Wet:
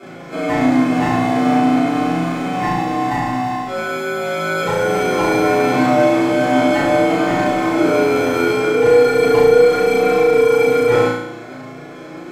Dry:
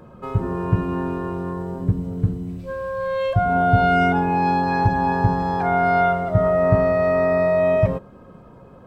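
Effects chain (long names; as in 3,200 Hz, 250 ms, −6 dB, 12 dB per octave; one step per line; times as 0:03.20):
sub-octave generator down 2 octaves, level −2 dB
decimation without filtering 34×
flanger 0.56 Hz, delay 3.7 ms, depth 2.8 ms, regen +42%
mid-hump overdrive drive 20 dB, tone 1,800 Hz, clips at −13 dBFS
change of speed 0.72×
flutter between parallel walls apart 6 metres, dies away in 0.82 s
convolution reverb, pre-delay 3 ms, DRR −5.5 dB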